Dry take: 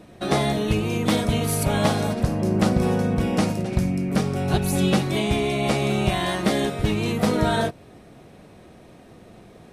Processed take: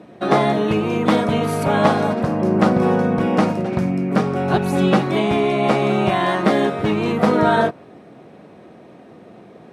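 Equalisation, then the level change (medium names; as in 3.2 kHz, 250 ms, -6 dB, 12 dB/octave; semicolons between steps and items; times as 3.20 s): dynamic bell 1.2 kHz, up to +5 dB, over -40 dBFS, Q 1.1; high-pass 180 Hz 12 dB/octave; low-pass 1.6 kHz 6 dB/octave; +6.0 dB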